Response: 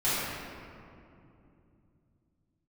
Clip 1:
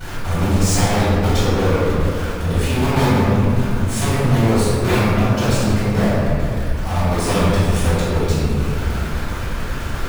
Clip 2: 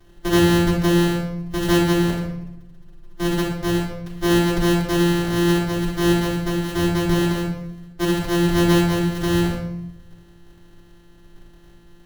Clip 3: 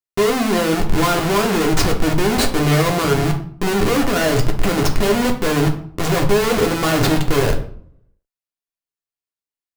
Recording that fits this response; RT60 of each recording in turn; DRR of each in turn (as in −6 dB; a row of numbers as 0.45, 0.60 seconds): 1; 2.7, 0.85, 0.60 seconds; −14.0, −8.5, 1.0 decibels